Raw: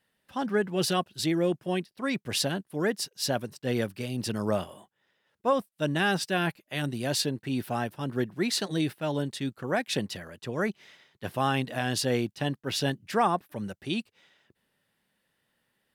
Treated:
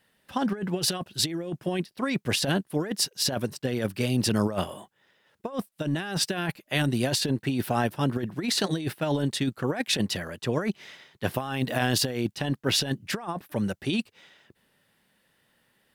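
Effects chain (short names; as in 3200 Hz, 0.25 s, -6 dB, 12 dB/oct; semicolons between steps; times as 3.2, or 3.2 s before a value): 11.34–12.21 bell 15000 Hz +14 dB 0.23 oct; negative-ratio compressor -30 dBFS, ratio -0.5; gain +4.5 dB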